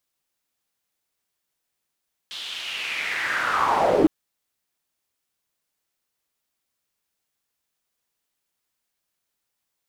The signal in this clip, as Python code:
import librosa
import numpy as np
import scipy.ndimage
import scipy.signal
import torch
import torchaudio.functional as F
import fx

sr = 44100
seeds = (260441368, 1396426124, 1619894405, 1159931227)

y = fx.riser_noise(sr, seeds[0], length_s=1.76, colour='pink', kind='bandpass', start_hz=3600.0, end_hz=280.0, q=4.1, swell_db=17.5, law='linear')